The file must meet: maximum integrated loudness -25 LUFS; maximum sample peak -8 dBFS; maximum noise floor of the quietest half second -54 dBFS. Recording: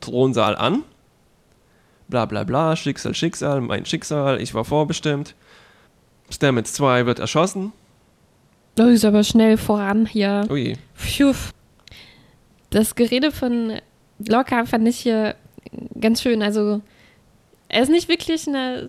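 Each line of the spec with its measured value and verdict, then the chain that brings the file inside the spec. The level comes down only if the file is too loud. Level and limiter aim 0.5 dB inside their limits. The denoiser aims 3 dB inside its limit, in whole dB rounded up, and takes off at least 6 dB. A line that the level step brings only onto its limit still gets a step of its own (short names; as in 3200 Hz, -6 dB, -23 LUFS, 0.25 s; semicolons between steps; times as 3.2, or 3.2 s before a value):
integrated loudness -19.5 LUFS: fail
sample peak -4.5 dBFS: fail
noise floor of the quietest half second -58 dBFS: OK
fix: gain -6 dB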